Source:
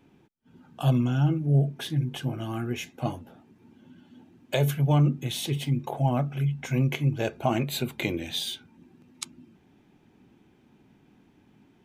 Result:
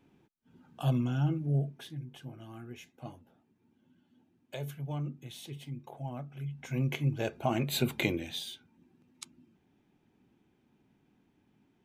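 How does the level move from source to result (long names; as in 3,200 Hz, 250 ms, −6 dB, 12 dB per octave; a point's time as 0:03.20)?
0:01.46 −6 dB
0:02.00 −15 dB
0:06.28 −15 dB
0:06.92 −5 dB
0:07.55 −5 dB
0:07.91 +2 dB
0:08.48 −10 dB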